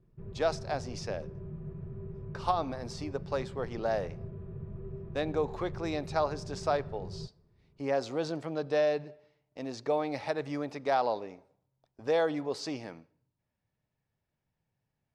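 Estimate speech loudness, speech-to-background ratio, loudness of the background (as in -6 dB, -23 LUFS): -33.5 LUFS, 10.0 dB, -43.5 LUFS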